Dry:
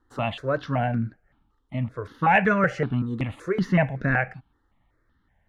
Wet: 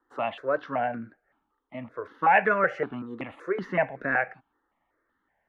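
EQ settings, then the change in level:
three-way crossover with the lows and the highs turned down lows −22 dB, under 290 Hz, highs −16 dB, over 2,600 Hz
parametric band 5,800 Hz +2 dB 0.27 octaves
0.0 dB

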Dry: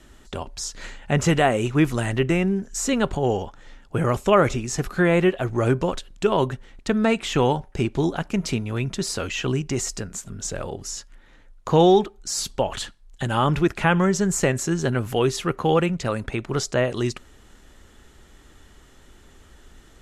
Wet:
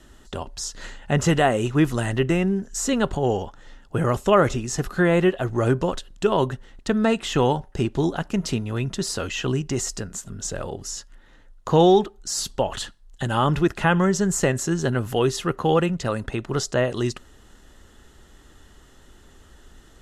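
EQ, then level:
notch filter 2,300 Hz, Q 7.1
0.0 dB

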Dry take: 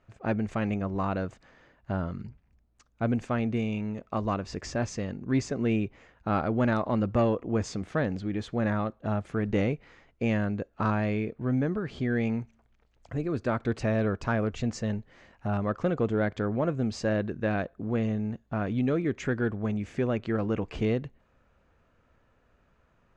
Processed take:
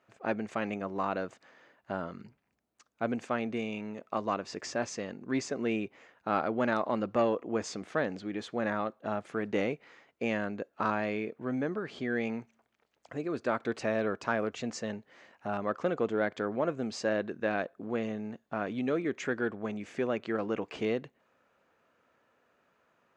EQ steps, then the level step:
Bessel high-pass filter 340 Hz, order 2
0.0 dB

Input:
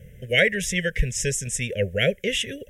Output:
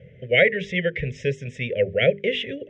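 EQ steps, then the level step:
loudspeaker in its box 140–3,100 Hz, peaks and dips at 210 Hz −6 dB, 1,600 Hz −10 dB, 2,800 Hz −5 dB
mains-hum notches 50/100/150/200/250/300/350/400/450 Hz
+4.5 dB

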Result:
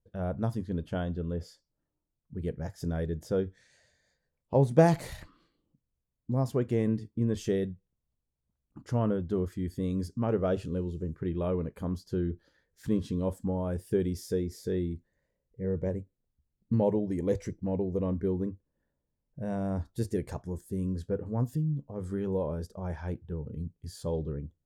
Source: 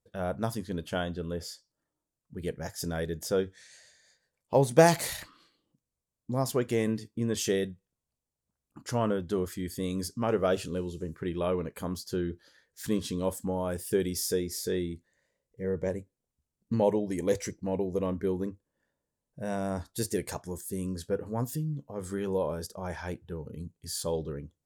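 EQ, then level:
spectral tilt −3 dB per octave
−5.0 dB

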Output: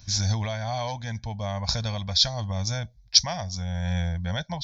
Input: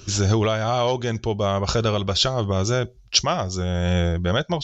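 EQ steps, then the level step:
parametric band 460 Hz −7 dB 1.1 octaves
phaser with its sweep stopped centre 1,900 Hz, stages 8
dynamic equaliser 5,200 Hz, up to +7 dB, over −38 dBFS, Q 1
−3.5 dB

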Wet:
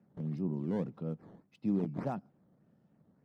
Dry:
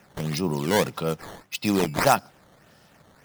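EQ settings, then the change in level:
resonant band-pass 200 Hz, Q 1.5
−5.5 dB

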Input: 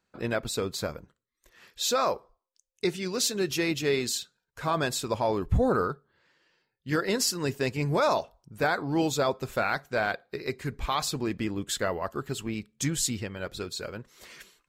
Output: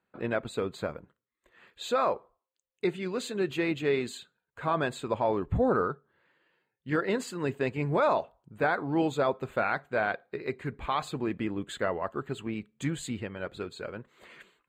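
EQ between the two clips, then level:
moving average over 8 samples
high-pass filter 130 Hz 6 dB per octave
0.0 dB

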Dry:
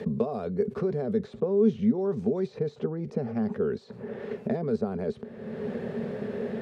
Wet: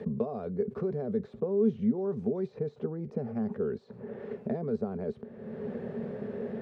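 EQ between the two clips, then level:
high-shelf EQ 2,400 Hz −11.5 dB
−3.5 dB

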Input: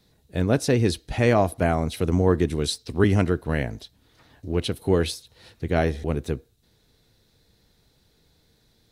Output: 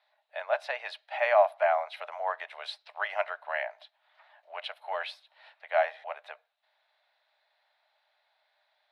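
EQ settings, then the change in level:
Chebyshev high-pass with heavy ripple 590 Hz, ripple 3 dB
high-frequency loss of the air 440 metres
+4.0 dB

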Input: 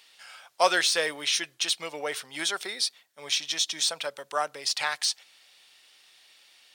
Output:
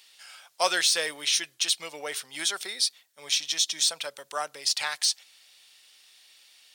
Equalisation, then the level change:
high-shelf EQ 3,000 Hz +9 dB
−4.5 dB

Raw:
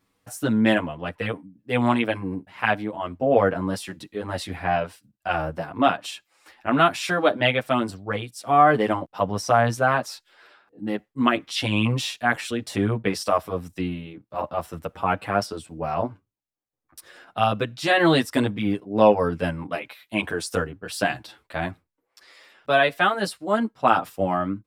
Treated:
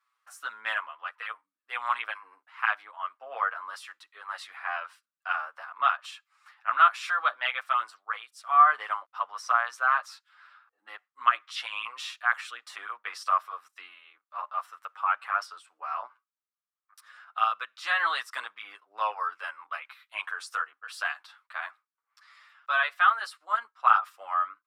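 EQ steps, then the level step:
four-pole ladder high-pass 1,100 Hz, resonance 65%
high-shelf EQ 8,800 Hz −9 dB
+3.0 dB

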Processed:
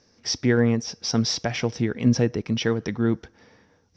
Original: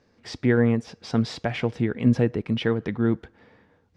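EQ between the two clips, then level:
low-pass with resonance 5,700 Hz, resonance Q 10
0.0 dB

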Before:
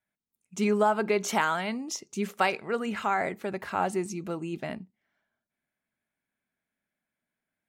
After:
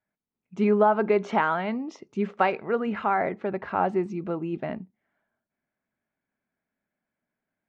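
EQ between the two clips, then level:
head-to-tape spacing loss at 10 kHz 43 dB
low-shelf EQ 240 Hz −5.5 dB
+7.5 dB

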